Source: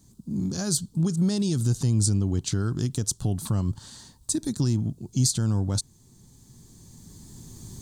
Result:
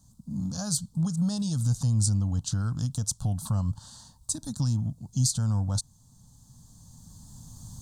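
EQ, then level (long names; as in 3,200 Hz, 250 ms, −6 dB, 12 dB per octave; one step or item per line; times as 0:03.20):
high-shelf EQ 12,000 Hz −6.5 dB
phaser with its sweep stopped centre 900 Hz, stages 4
0.0 dB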